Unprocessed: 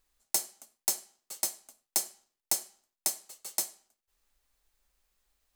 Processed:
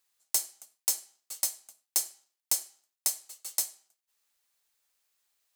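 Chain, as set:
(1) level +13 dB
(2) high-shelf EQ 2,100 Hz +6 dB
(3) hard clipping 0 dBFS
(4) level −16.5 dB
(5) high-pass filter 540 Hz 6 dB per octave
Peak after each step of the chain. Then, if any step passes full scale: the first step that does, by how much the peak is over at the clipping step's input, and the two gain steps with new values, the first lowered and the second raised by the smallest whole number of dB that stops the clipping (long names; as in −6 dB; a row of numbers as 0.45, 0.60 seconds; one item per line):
+2.0, +7.5, 0.0, −16.5, −15.0 dBFS
step 1, 7.5 dB
step 1 +5 dB, step 4 −8.5 dB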